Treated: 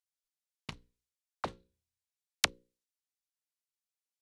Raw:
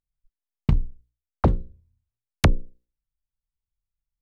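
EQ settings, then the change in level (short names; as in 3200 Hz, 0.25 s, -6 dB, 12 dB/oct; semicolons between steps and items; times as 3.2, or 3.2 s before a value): band-pass 6600 Hz, Q 0.6; +2.5 dB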